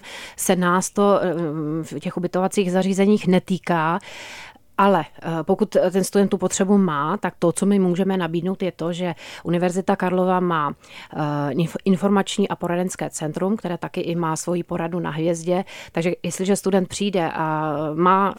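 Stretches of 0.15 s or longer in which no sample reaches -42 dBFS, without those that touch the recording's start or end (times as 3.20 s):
4.56–4.78 s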